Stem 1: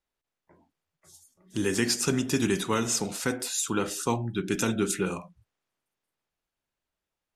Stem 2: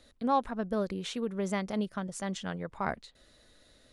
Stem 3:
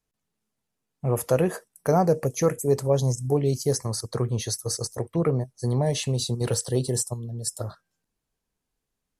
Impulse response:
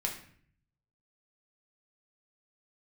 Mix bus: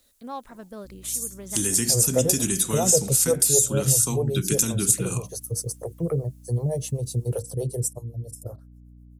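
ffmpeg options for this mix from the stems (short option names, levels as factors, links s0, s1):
-filter_complex "[0:a]highshelf=f=6200:g=12,acrossover=split=250[s0][s1];[s1]acompressor=threshold=0.0178:ratio=10[s2];[s0][s2]amix=inputs=2:normalize=0,equalizer=f=8000:w=0.66:g=7.5,volume=1.33,asplit=2[s3][s4];[1:a]volume=0.376[s5];[2:a]equalizer=f=125:t=o:w=1:g=7,equalizer=f=250:t=o:w=1:g=-6,equalizer=f=500:t=o:w=1:g=8,equalizer=f=1000:t=o:w=1:g=-5,equalizer=f=2000:t=o:w=1:g=-11,equalizer=f=4000:t=o:w=1:g=-11,equalizer=f=8000:t=o:w=1:g=-3,acrossover=split=410[s6][s7];[s6]aeval=exprs='val(0)*(1-1/2+1/2*cos(2*PI*7.9*n/s))':c=same[s8];[s7]aeval=exprs='val(0)*(1-1/2-1/2*cos(2*PI*7.9*n/s))':c=same[s9];[s8][s9]amix=inputs=2:normalize=0,aeval=exprs='val(0)+0.00562*(sin(2*PI*60*n/s)+sin(2*PI*2*60*n/s)/2+sin(2*PI*3*60*n/s)/3+sin(2*PI*4*60*n/s)/4+sin(2*PI*5*60*n/s)/5)':c=same,adelay=850,volume=0.841[s10];[s4]apad=whole_len=173134[s11];[s5][s11]sidechaincompress=threshold=0.02:ratio=8:attack=16:release=390[s12];[s3][s12][s10]amix=inputs=3:normalize=0,crystalizer=i=2:c=0"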